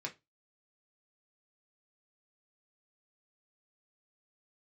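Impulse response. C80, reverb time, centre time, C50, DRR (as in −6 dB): 27.0 dB, 0.20 s, 10 ms, 17.0 dB, 0.5 dB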